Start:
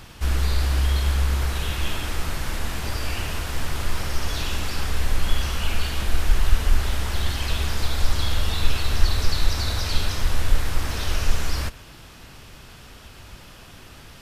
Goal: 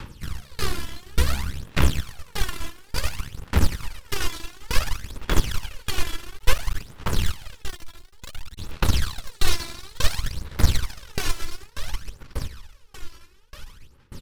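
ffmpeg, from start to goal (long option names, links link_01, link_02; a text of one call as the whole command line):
ffmpeg -i in.wav -filter_complex "[0:a]acrossover=split=180|1000|2000[link_01][link_02][link_03][link_04];[link_01]alimiter=limit=-15.5dB:level=0:latency=1:release=150[link_05];[link_05][link_02][link_03][link_04]amix=inputs=4:normalize=0,asuperstop=centerf=690:order=12:qfactor=3.7,aecho=1:1:785|1570|2355|3140|3925|4710:0.562|0.253|0.114|0.0512|0.0231|0.0104,asplit=3[link_06][link_07][link_08];[link_06]afade=type=out:start_time=7.61:duration=0.02[link_09];[link_07]asoftclip=type=hard:threshold=-26.5dB,afade=type=in:start_time=7.61:duration=0.02,afade=type=out:start_time=8.57:duration=0.02[link_10];[link_08]afade=type=in:start_time=8.57:duration=0.02[link_11];[link_09][link_10][link_11]amix=inputs=3:normalize=0,aeval=exprs='0.299*(cos(1*acos(clip(val(0)/0.299,-1,1)))-cos(1*PI/2))+0.0335*(cos(4*acos(clip(val(0)/0.299,-1,1)))-cos(4*PI/2))+0.106*(cos(6*acos(clip(val(0)/0.299,-1,1)))-cos(6*PI/2))+0.0944*(cos(7*acos(clip(val(0)/0.299,-1,1)))-cos(7*PI/2))+0.0133*(cos(8*acos(clip(val(0)/0.299,-1,1)))-cos(8*PI/2))':channel_layout=same,aphaser=in_gain=1:out_gain=1:delay=3:decay=0.7:speed=0.57:type=sinusoidal,asettb=1/sr,asplit=3[link_12][link_13][link_14];[link_12]atrim=end=5.094[link_15];[link_13]atrim=start=5.09:end=5.67,asetpts=PTS-STARTPTS,afade=type=in:duration=0.004:curve=qsin,afade=type=out:start_time=0.576:duration=0.004:curve=qsin,aeval=exprs='1.33*(cos(1*acos(clip(val(0)/1.33,-1,1)))-cos(1*PI/2))+0.188*(cos(2*acos(clip(val(0)/1.33,-1,1)))-cos(2*PI/2))+0.0841*(cos(6*acos(clip(val(0)/1.33,-1,1)))-cos(6*PI/2))':channel_layout=same[link_16];[link_14]atrim=start=5.666[link_17];[link_15][link_16]acrossfade=duration=0.004:curve1=hsin:curve2=qsin[link_18];[link_18][link_17]acrossfade=duration=0.004:curve1=qsin:curve2=hsin,asettb=1/sr,asplit=3[link_19][link_20][link_21];[link_19]atrim=end=6.214[link_22];[link_20]atrim=start=6.21:end=6.82,asetpts=PTS-STARTPTS,afade=type=in:duration=0.004:curve=qsin,afade=type=out:start_time=0.606:duration=0.004:curve=qsin,aeval=exprs='max(val(0),0)':channel_layout=same[link_23];[link_21]atrim=start=6.816[link_24];[link_22][link_23]acrossfade=duration=0.004:curve1=hsin:curve2=qsin[link_25];[link_25][link_24]acrossfade=duration=0.004:curve1=qsin:curve2=hsin,aeval=exprs='val(0)*pow(10,-29*if(lt(mod(1.7*n/s,1),2*abs(1.7)/1000),1-mod(1.7*n/s,1)/(2*abs(1.7)/1000),(mod(1.7*n/s,1)-2*abs(1.7)/1000)/(1-2*abs(1.7)/1000))/20)':channel_layout=same,volume=-3dB" out.wav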